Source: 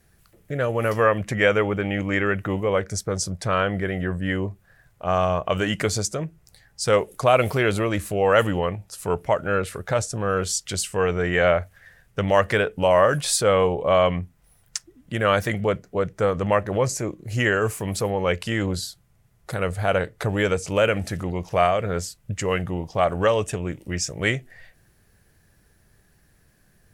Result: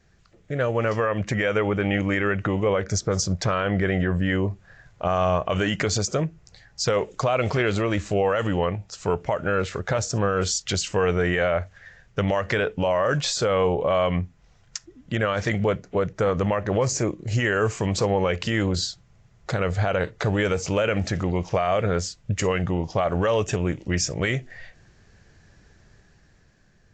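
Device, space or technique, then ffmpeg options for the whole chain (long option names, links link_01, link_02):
low-bitrate web radio: -af "dynaudnorm=framelen=270:gausssize=9:maxgain=8dB,alimiter=limit=-13dB:level=0:latency=1:release=100" -ar 16000 -c:a aac -b:a 48k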